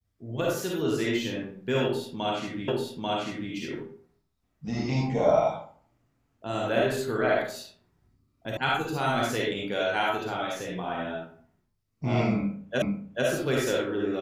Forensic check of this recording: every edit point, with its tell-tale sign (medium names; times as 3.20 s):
2.68 s: repeat of the last 0.84 s
8.57 s: sound stops dead
12.82 s: repeat of the last 0.44 s